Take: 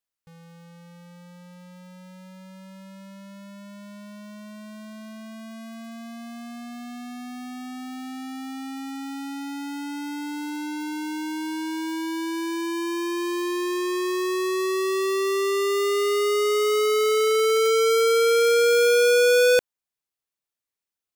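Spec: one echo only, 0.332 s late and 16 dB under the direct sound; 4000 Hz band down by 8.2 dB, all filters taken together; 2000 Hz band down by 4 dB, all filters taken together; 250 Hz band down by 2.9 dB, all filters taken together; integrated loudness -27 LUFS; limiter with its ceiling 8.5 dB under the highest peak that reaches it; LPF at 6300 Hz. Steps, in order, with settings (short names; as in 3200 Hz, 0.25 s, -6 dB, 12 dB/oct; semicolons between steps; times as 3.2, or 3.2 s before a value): LPF 6300 Hz; bell 250 Hz -4.5 dB; bell 2000 Hz -3.5 dB; bell 4000 Hz -9 dB; limiter -24.5 dBFS; echo 0.332 s -16 dB; gain +2.5 dB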